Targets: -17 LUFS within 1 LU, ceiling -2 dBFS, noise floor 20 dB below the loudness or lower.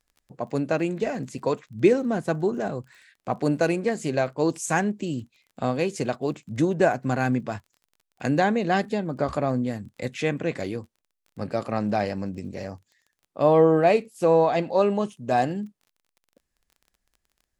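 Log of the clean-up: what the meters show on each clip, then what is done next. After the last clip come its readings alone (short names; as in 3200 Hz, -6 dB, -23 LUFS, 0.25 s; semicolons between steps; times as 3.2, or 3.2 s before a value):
ticks 24/s; loudness -25.0 LUFS; peak -6.0 dBFS; loudness target -17.0 LUFS
-> de-click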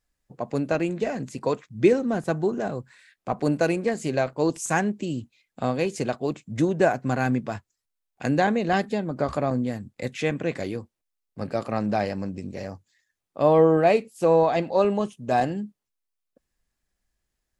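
ticks 0/s; loudness -25.0 LUFS; peak -6.0 dBFS; loudness target -17.0 LUFS
-> gain +8 dB; limiter -2 dBFS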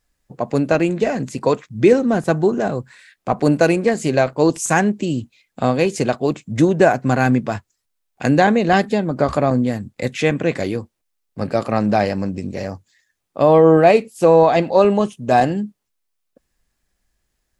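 loudness -17.5 LUFS; peak -2.0 dBFS; noise floor -74 dBFS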